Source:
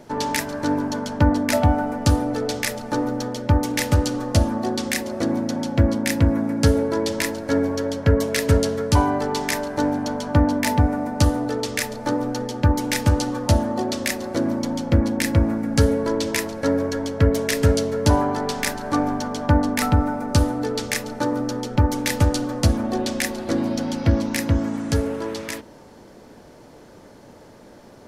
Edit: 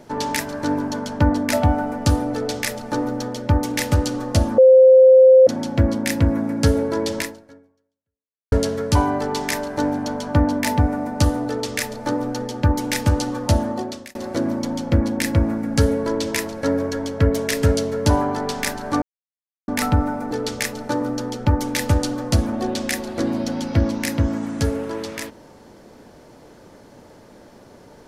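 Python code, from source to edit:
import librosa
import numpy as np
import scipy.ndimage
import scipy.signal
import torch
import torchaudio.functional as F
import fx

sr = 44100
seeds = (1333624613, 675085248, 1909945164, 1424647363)

y = fx.edit(x, sr, fx.bleep(start_s=4.58, length_s=0.89, hz=521.0, db=-6.0),
    fx.fade_out_span(start_s=7.19, length_s=1.33, curve='exp'),
    fx.fade_out_span(start_s=13.69, length_s=0.46),
    fx.silence(start_s=19.02, length_s=0.66),
    fx.cut(start_s=20.31, length_s=0.31), tone=tone)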